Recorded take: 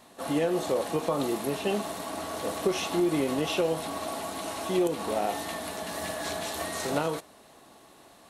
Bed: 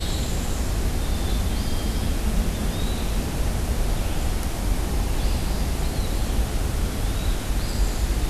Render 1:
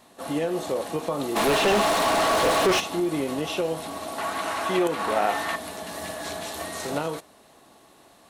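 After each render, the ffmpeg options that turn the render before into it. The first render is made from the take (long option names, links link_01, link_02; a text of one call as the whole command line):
ffmpeg -i in.wav -filter_complex "[0:a]asplit=3[link_01][link_02][link_03];[link_01]afade=type=out:start_time=1.35:duration=0.02[link_04];[link_02]asplit=2[link_05][link_06];[link_06]highpass=frequency=720:poles=1,volume=31dB,asoftclip=type=tanh:threshold=-12.5dB[link_07];[link_05][link_07]amix=inputs=2:normalize=0,lowpass=frequency=3200:poles=1,volume=-6dB,afade=type=in:start_time=1.35:duration=0.02,afade=type=out:start_time=2.79:duration=0.02[link_08];[link_03]afade=type=in:start_time=2.79:duration=0.02[link_09];[link_04][link_08][link_09]amix=inputs=3:normalize=0,asettb=1/sr,asplit=3[link_10][link_11][link_12];[link_10]atrim=end=4.184[link_13];[link_11]atrim=start=4.18:end=5.56,asetpts=PTS-STARTPTS,afade=type=in:duration=0.004:curve=qsin,afade=type=out:start_time=1.376:duration=0.004:curve=qsin,equalizer=frequency=1500:width_type=o:width=1.9:gain=12.5[link_14];[link_12]atrim=start=5.556[link_15];[link_13][link_14]acrossfade=duration=0.004:curve1=hsin:curve2=qsin[link_16];[link_16][link_15]acrossfade=duration=0.004:curve1=qsin:curve2=hsin" out.wav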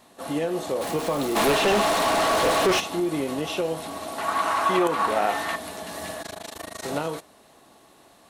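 ffmpeg -i in.wav -filter_complex "[0:a]asettb=1/sr,asplit=3[link_01][link_02][link_03];[link_01]atrim=end=0.814[link_04];[link_02]atrim=start=0.81:end=1.52,asetpts=PTS-STARTPTS,afade=type=in:duration=0.004:curve=qsin,afade=type=out:start_time=0.706:duration=0.004:curve=qsin,aeval=exprs='val(0)+0.5*0.0335*sgn(val(0))':channel_layout=same[link_05];[link_03]atrim=start=1.516[link_06];[link_04][link_05]acrossfade=duration=0.004:curve1=hsin:curve2=qsin[link_07];[link_07][link_06]acrossfade=duration=0.004:curve1=qsin:curve2=hsin,asettb=1/sr,asplit=3[link_08][link_09][link_10];[link_08]atrim=end=4.284[link_11];[link_09]atrim=start=4.28:end=5.07,asetpts=PTS-STARTPTS,afade=type=in:duration=0.004:curve=qsin,afade=type=out:start_time=0.786:duration=0.004:curve=qsin,equalizer=frequency=1100:width_type=o:width=0.8:gain=8[link_12];[link_10]atrim=start=5.066[link_13];[link_11][link_12]acrossfade=duration=0.004:curve1=hsin:curve2=qsin[link_14];[link_14][link_13]acrossfade=duration=0.004:curve1=qsin:curve2=hsin,asettb=1/sr,asplit=3[link_15][link_16][link_17];[link_15]atrim=end=6.224[link_18];[link_16]atrim=start=6.22:end=6.84,asetpts=PTS-STARTPTS,afade=type=in:duration=0.004:curve=qsin,afade=type=out:start_time=0.616:duration=0.004:curve=qsin,tremolo=f=26:d=0.974[link_19];[link_17]atrim=start=6.836[link_20];[link_18][link_19]acrossfade=duration=0.004:curve1=hsin:curve2=qsin[link_21];[link_21][link_20]acrossfade=duration=0.004:curve1=qsin:curve2=hsin" out.wav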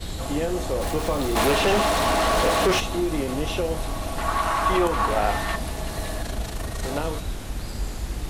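ffmpeg -i in.wav -i bed.wav -filter_complex "[1:a]volume=-6.5dB[link_01];[0:a][link_01]amix=inputs=2:normalize=0" out.wav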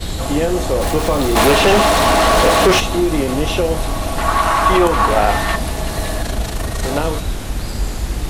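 ffmpeg -i in.wav -af "volume=8.5dB,alimiter=limit=-2dB:level=0:latency=1" out.wav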